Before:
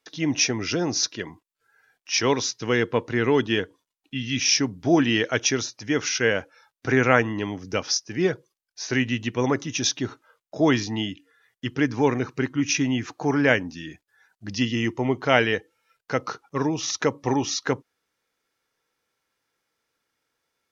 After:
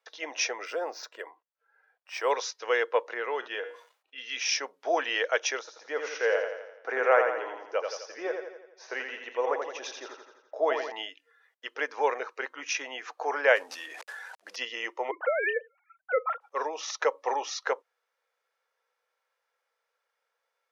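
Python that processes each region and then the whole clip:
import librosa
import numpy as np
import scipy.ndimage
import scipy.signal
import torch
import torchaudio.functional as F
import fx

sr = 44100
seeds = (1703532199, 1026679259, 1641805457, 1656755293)

y = fx.chain(x, sr, fx.high_shelf(hz=2200.0, db=-8.5),
    fx.resample_linear(factor=4), at=(0.65, 2.31))
y = fx.chain(y, sr, fx.high_shelf(hz=4700.0, db=-7.0),
    fx.comb_fb(f0_hz=120.0, decay_s=0.26, harmonics='all', damping=0.0, mix_pct=50),
    fx.sustainer(db_per_s=110.0), at=(3.14, 4.18))
y = fx.chain(y, sr, fx.high_shelf(hz=2000.0, db=-11.5),
    fx.echo_feedback(ms=85, feedback_pct=53, wet_db=-5.5), at=(5.59, 10.92))
y = fx.chain(y, sr, fx.cvsd(bps=64000),
    fx.sustainer(db_per_s=23.0), at=(13.56, 14.56))
y = fx.chain(y, sr, fx.sine_speech(),
    fx.over_compress(threshold_db=-24.0, ratio=-1.0), at=(15.11, 16.41))
y = scipy.signal.sosfilt(scipy.signal.cheby1(4, 1.0, 500.0, 'highpass', fs=sr, output='sos'), y)
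y = fx.high_shelf(y, sr, hz=2700.0, db=-11.5)
y = y * 10.0 ** (1.5 / 20.0)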